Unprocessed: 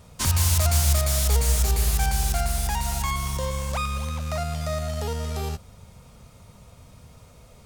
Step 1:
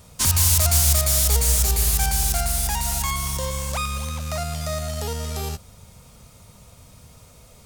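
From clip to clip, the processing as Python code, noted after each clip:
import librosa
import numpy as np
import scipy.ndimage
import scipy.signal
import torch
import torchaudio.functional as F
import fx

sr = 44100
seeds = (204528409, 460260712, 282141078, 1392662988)

y = fx.high_shelf(x, sr, hz=4200.0, db=8.5)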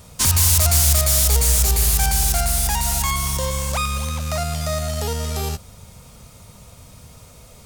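y = 10.0 ** (-12.5 / 20.0) * np.tanh(x / 10.0 ** (-12.5 / 20.0))
y = y * librosa.db_to_amplitude(4.0)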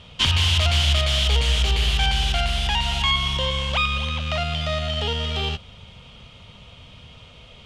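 y = fx.lowpass_res(x, sr, hz=3100.0, q=6.9)
y = y * librosa.db_to_amplitude(-2.0)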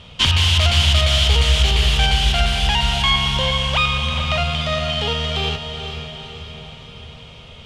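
y = fx.echo_diffused(x, sr, ms=455, feedback_pct=53, wet_db=-8.0)
y = y * librosa.db_to_amplitude(3.5)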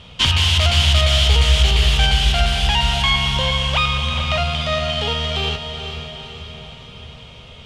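y = fx.doubler(x, sr, ms=16.0, db=-13.0)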